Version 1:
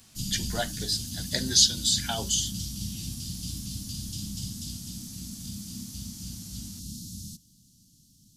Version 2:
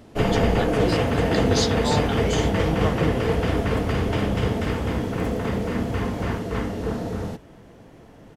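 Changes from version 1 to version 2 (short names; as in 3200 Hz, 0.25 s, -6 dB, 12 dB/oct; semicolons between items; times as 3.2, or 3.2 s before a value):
first sound: remove inverse Chebyshev band-stop 430–2000 Hz, stop band 50 dB; second sound: unmuted; master: add tone controls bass +12 dB, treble -11 dB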